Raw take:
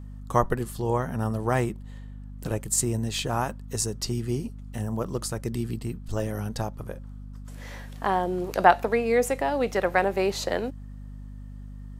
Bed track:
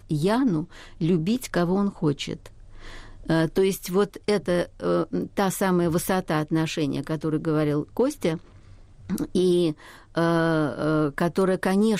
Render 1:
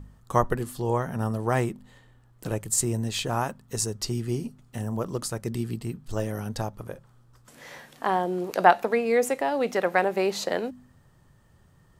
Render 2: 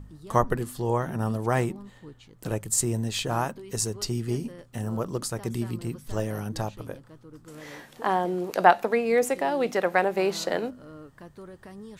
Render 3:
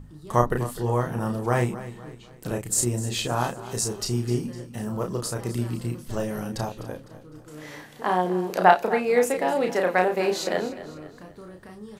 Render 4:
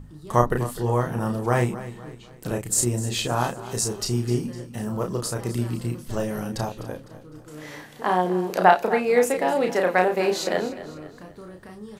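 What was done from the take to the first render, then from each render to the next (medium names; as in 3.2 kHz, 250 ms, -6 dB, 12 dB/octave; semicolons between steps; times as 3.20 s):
de-hum 50 Hz, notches 5
add bed track -22.5 dB
doubling 33 ms -4 dB; feedback delay 253 ms, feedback 42%, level -15 dB
trim +1.5 dB; peak limiter -2 dBFS, peak gain reduction 2 dB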